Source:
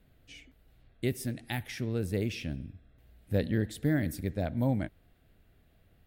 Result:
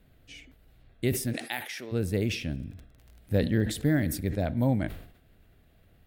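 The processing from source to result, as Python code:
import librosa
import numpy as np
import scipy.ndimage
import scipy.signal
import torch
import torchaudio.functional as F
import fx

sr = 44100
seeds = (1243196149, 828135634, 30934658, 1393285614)

y = fx.highpass(x, sr, hz=490.0, slope=12, at=(1.32, 1.91), fade=0.02)
y = fx.dmg_crackle(y, sr, seeds[0], per_s=30.0, level_db=-45.0, at=(2.47, 4.03), fade=0.02)
y = fx.sustainer(y, sr, db_per_s=90.0)
y = y * 10.0 ** (3.0 / 20.0)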